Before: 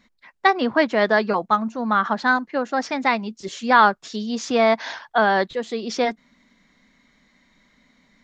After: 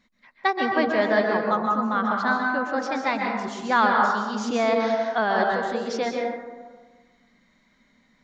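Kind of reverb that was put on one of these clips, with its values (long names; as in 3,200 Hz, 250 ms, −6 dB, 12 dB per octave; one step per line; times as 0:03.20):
dense smooth reverb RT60 1.4 s, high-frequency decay 0.35×, pre-delay 115 ms, DRR 0 dB
level −6 dB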